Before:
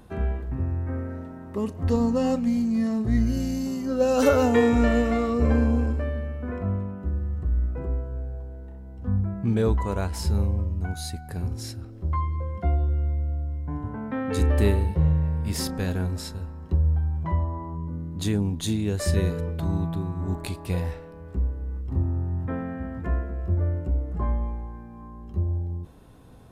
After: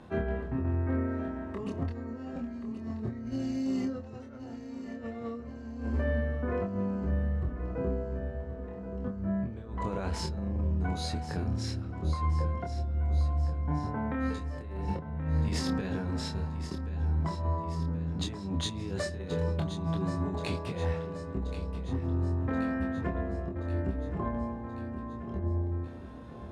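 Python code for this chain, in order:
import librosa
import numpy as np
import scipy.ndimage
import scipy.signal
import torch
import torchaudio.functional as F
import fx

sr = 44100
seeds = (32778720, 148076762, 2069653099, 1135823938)

y = fx.highpass(x, sr, hz=140.0, slope=6)
y = fx.high_shelf(y, sr, hz=7400.0, db=-5.0)
y = fx.over_compress(y, sr, threshold_db=-31.0, ratio=-0.5)
y = np.clip(y, -10.0 ** (-20.5 / 20.0), 10.0 ** (-20.5 / 20.0))
y = fx.air_absorb(y, sr, metres=76.0)
y = fx.doubler(y, sr, ms=26.0, db=-4)
y = fx.echo_feedback(y, sr, ms=1079, feedback_pct=57, wet_db=-11.5)
y = fx.attack_slew(y, sr, db_per_s=450.0)
y = y * librosa.db_to_amplitude(-2.0)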